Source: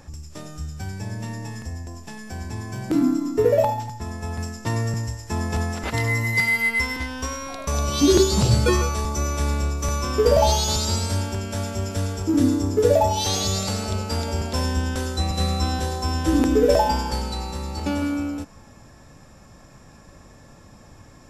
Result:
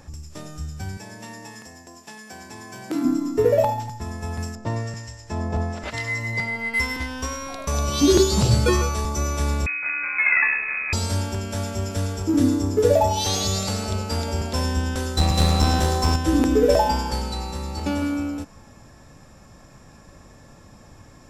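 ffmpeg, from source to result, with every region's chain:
-filter_complex "[0:a]asettb=1/sr,asplit=3[s0][s1][s2];[s0]atrim=end=0.974[s3];[s1]atrim=start=0.97:end=3.05,asetpts=PTS-STARTPTS,afade=t=in:d=0.004:c=qsin,afade=t=out:st=2.076:d=0.004:c=qsin,highpass=170,lowshelf=f=330:g=-8.5[s4];[s2]atrim=start=3.046[s5];[s3][s4]acrossfade=d=0.004:c1=hsin:c2=qsin[s6];[s6][s5]acrossfade=d=0.004:c1=qsin:c2=hsin,asettb=1/sr,asplit=3[s7][s8][s9];[s7]atrim=end=4.554[s10];[s8]atrim=start=4.55:end=6.74,asetpts=PTS-STARTPTS,afade=t=in:d=0.004:c=qsin,afade=t=out:st=2.186:d=0.004:c=qsin,lowpass=7000,equalizer=f=610:t=o:w=0.24:g=9,acrossover=split=1300[s11][s12];[s11]aeval=exprs='val(0)*(1-0.7/2+0.7/2*cos(2*PI*1*n/s))':c=same[s13];[s12]aeval=exprs='val(0)*(1-0.7/2-0.7/2*cos(2*PI*1*n/s))':c=same[s14];[s13][s14]amix=inputs=2:normalize=0[s15];[s9]atrim=start=6.736[s16];[s10][s15]acrossfade=d=0.004:c1=hsin:c2=qsin[s17];[s17][s16]acrossfade=d=0.004:c1=qsin:c2=hsin,asettb=1/sr,asplit=3[s18][s19][s20];[s18]atrim=end=9.664[s21];[s19]atrim=start=9.66:end=10.93,asetpts=PTS-STARTPTS,afade=t=in:d=0.004:c=qsin,afade=t=out:st=1.266:d=0.004:c=qsin,equalizer=f=65:t=o:w=0.28:g=-5,aeval=exprs='clip(val(0),-1,0.0596)':c=same,lowpass=f=2200:t=q:w=0.5098,lowpass=f=2200:t=q:w=0.6013,lowpass=f=2200:t=q:w=0.9,lowpass=f=2200:t=q:w=2.563,afreqshift=-2600[s22];[s20]atrim=start=10.926[s23];[s21][s22]acrossfade=d=0.004:c1=hsin:c2=qsin[s24];[s24][s23]acrossfade=d=0.004:c1=qsin:c2=hsin,asettb=1/sr,asplit=3[s25][s26][s27];[s25]atrim=end=15.174[s28];[s26]atrim=start=15.17:end=16.16,asetpts=PTS-STARTPTS,afade=t=in:d=0.004:c=qsin,afade=t=out:st=0.986:d=0.004:c=qsin,acontrast=55,aeval=exprs='clip(val(0),-1,0.106)':c=same[s29];[s27]atrim=start=16.156[s30];[s28][s29]acrossfade=d=0.004:c1=hsin:c2=qsin[s31];[s31][s30]acrossfade=d=0.004:c1=qsin:c2=hsin"

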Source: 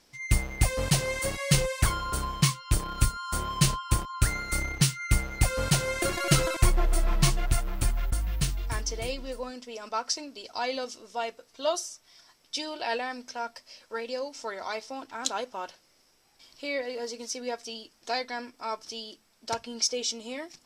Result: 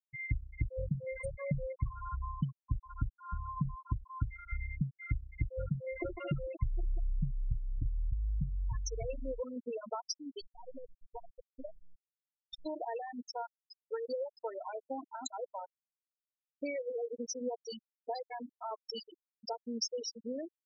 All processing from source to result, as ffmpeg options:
-filter_complex "[0:a]asettb=1/sr,asplit=3[s0][s1][s2];[s0]atrim=end=10.414[s3];[s1]atrim=start=10.41:end=12.66,asetpts=PTS-STARTPTS,afade=t=in:d=0.004:c=qsin,afade=t=out:st=2.246:d=0.004:c=qsin,acompressor=threshold=0.0126:ratio=10:attack=3.2:release=140:knee=1:detection=peak,acrusher=bits=7:dc=4:mix=0:aa=0.000001[s4];[s2]atrim=start=12.656[s5];[s3][s4]acrossfade=d=0.004:c1=hsin:c2=qsin[s6];[s6][s5]acrossfade=d=0.004:c1=qsin:c2=hsin,acompressor=threshold=0.00891:ratio=4,afftfilt=real='re*gte(hypot(re,im),0.0316)':imag='im*gte(hypot(re,im),0.0316)':win_size=1024:overlap=0.75,equalizer=f=1600:w=0.95:g=-10,volume=2.51"

